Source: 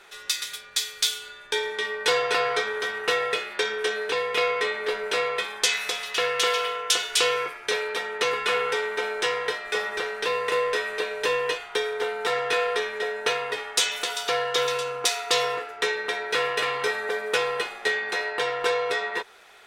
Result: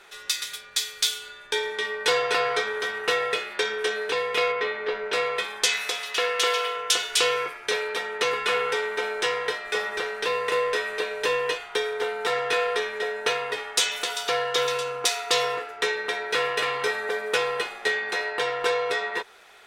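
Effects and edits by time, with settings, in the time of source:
4.52–5.13 air absorption 170 m
5.82–6.77 HPF 230 Hz

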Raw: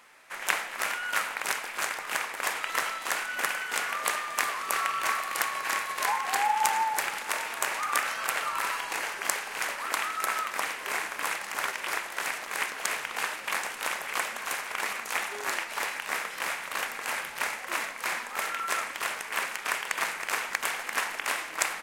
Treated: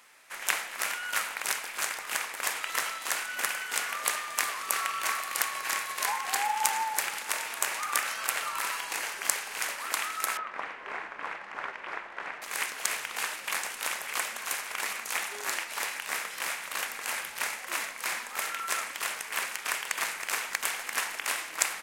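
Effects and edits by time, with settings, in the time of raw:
10.37–12.42 LPF 1700 Hz
whole clip: high shelf 2900 Hz +8 dB; gain -4.5 dB

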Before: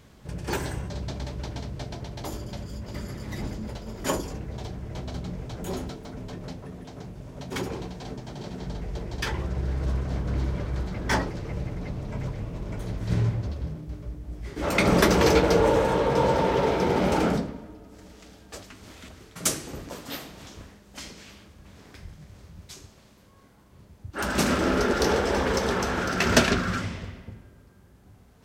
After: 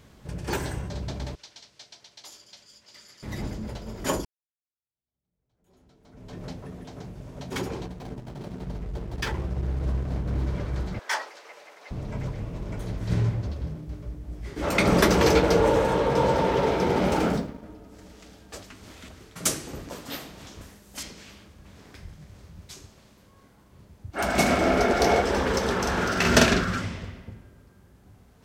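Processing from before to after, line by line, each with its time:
1.35–3.23 band-pass 5100 Hz, Q 1.1
4.25–6.4 fade in exponential
7.86–10.47 backlash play -36.5 dBFS
10.99–11.91 Bessel high-pass 880 Hz, order 4
17.1–17.63 G.711 law mismatch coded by A
20.61–21.03 bell 12000 Hz +11 dB 1.5 oct
24.12–25.22 small resonant body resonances 700/2200 Hz, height 15 dB
25.81–26.65 doubler 46 ms -3 dB

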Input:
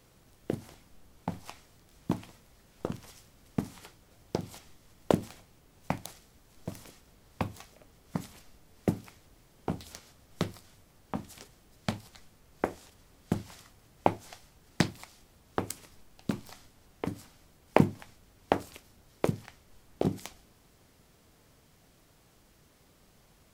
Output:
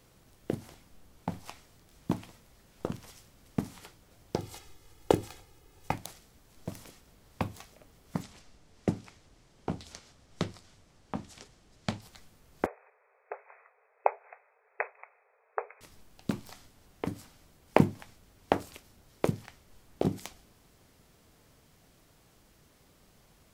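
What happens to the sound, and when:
4.36–5.94 comb 2.4 ms
8.22–12.02 Chebyshev low-pass 6900 Hz
12.66–15.81 brick-wall FIR band-pass 400–2600 Hz

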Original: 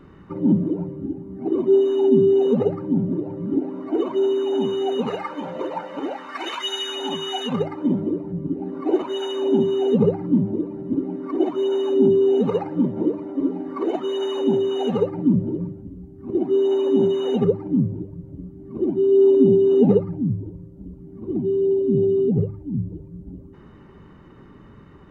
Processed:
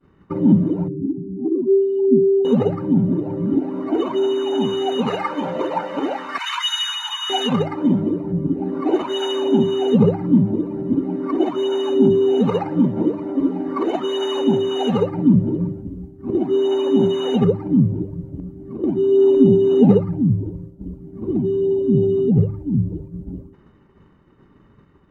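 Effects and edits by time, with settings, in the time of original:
0.88–2.45 spectral contrast raised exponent 2
6.38–7.3 Chebyshev high-pass 970 Hz, order 5
18.39–18.84 compressor, threshold -32 dBFS
whole clip: expander -36 dBFS; dynamic EQ 410 Hz, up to -6 dB, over -28 dBFS, Q 1.1; gain +6.5 dB

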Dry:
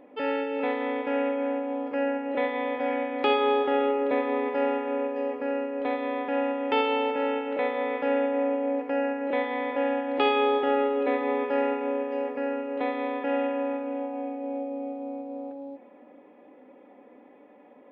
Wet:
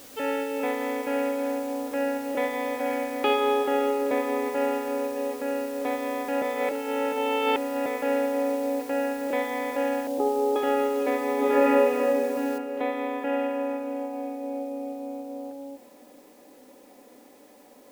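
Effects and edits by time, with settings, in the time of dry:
6.42–7.86 reverse
10.07–10.56 inverse Chebyshev low-pass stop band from 2800 Hz, stop band 60 dB
11.35–11.95 reverb throw, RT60 2.4 s, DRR -7 dB
12.58 noise floor step -48 dB -61 dB

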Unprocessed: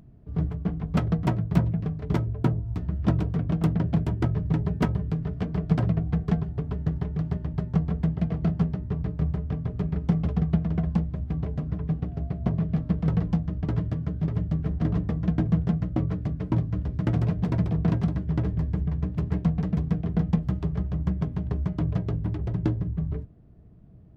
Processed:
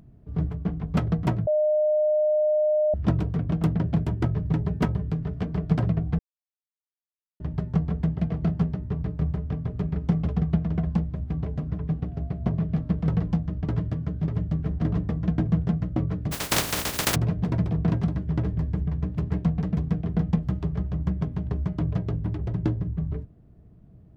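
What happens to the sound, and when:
1.47–2.94 bleep 609 Hz -18.5 dBFS
6.19–7.4 mute
16.31–17.14 spectral contrast lowered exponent 0.2

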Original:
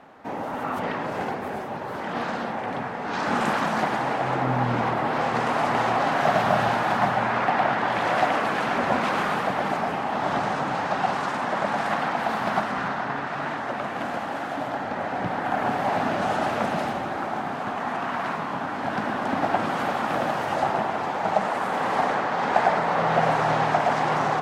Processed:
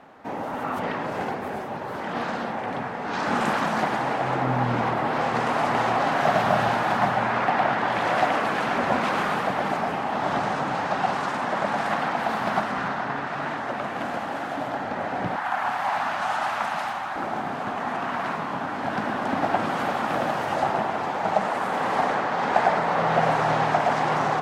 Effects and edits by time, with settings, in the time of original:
15.36–17.16 resonant low shelf 650 Hz -11.5 dB, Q 1.5

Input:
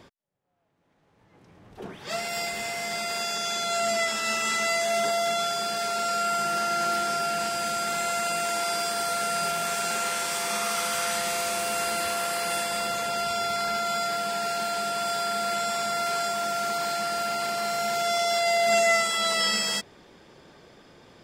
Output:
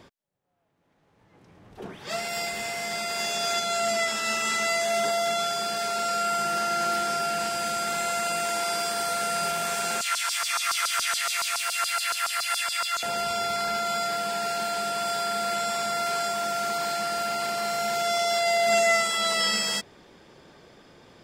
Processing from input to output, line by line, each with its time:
2.85–3.26 echo throw 0.33 s, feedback 20%, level -2 dB
10.01–13.03 LFO high-pass saw down 7.1 Hz 1000–5100 Hz

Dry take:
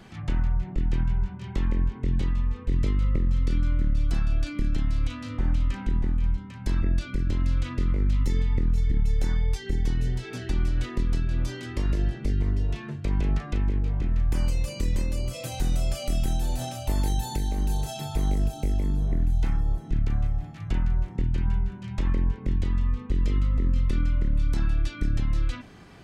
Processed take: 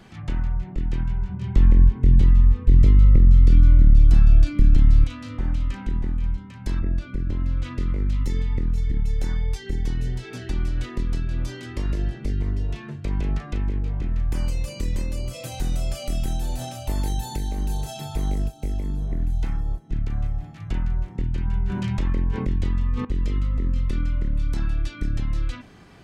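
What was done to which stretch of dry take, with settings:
1.29–5.04 low shelf 220 Hz +11.5 dB
6.79–7.63 high shelf 2700 Hz -11.5 dB
18.42–20.17 upward expander, over -40 dBFS
21.53–23.05 fast leveller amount 70%

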